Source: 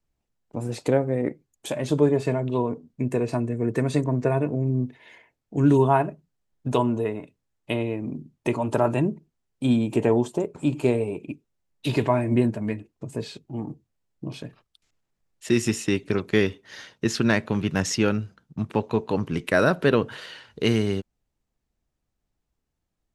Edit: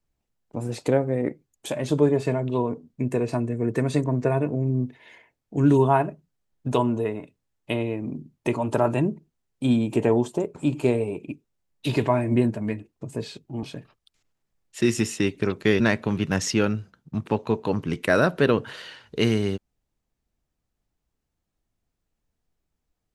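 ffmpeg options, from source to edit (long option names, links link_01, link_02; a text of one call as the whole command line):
ffmpeg -i in.wav -filter_complex "[0:a]asplit=3[link_01][link_02][link_03];[link_01]atrim=end=13.632[link_04];[link_02]atrim=start=14.308:end=16.482[link_05];[link_03]atrim=start=17.238[link_06];[link_04][link_05]acrossfade=duration=0.004:curve1=hsin:curve2=hsin[link_07];[link_07][link_06]acrossfade=duration=0.004:curve1=hsin:curve2=hsin" out.wav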